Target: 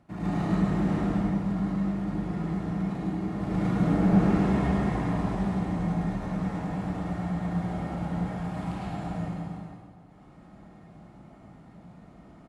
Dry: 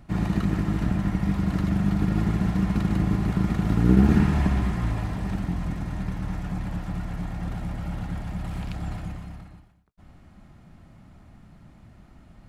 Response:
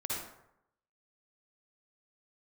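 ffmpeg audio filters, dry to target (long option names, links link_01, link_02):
-filter_complex "[0:a]highpass=frequency=410:poles=1,tiltshelf=frequency=1200:gain=5.5,asettb=1/sr,asplit=3[link_01][link_02][link_03];[link_01]atrim=end=1.084[link_04];[link_02]atrim=start=1.08:end=3.4,asetpts=PTS-STARTPTS,afade=type=in:duration=0.004:curve=qsin,afade=type=out:start_time=2.316:duration=0.004:curve=qsin,acompressor=threshold=-31dB:ratio=6[link_05];[link_03]atrim=start=3.396[link_06];[link_04][link_05]acrossfade=duration=0.004:curve1=hsin:curve2=qsin[link_07];[link_07][link_06]acrossfade=duration=0.004:curve1=qsin:curve2=hsin,asoftclip=type=tanh:threshold=-22dB,aecho=1:1:103|464:0.501|0.211[link_08];[1:a]atrim=start_sample=2205,asetrate=22932,aresample=44100[link_09];[link_08][link_09]afir=irnorm=-1:irlink=0,volume=-6dB"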